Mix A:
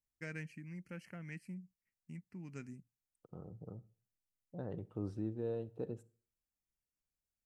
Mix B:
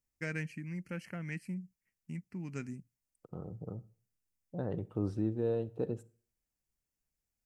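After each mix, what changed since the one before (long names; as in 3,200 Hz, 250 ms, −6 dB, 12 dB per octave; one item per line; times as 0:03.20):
first voice +7.0 dB
second voice +6.5 dB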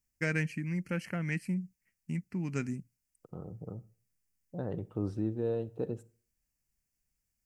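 first voice +6.5 dB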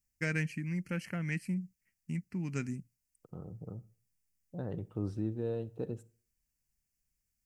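master: add parametric band 630 Hz −4 dB 2.9 octaves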